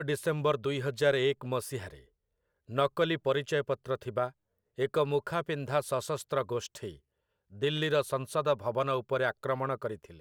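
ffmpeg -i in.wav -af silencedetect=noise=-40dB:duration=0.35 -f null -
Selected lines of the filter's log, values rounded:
silence_start: 1.94
silence_end: 2.70 | silence_duration: 0.76
silence_start: 4.29
silence_end: 4.78 | silence_duration: 0.49
silence_start: 6.91
silence_end: 7.62 | silence_duration: 0.70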